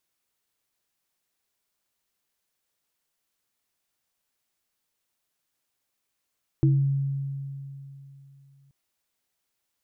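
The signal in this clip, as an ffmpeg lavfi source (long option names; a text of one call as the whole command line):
ffmpeg -f lavfi -i "aevalsrc='0.158*pow(10,-3*t/3.08)*sin(2*PI*138*t)+0.1*pow(10,-3*t/0.37)*sin(2*PI*323*t)':duration=2.08:sample_rate=44100" out.wav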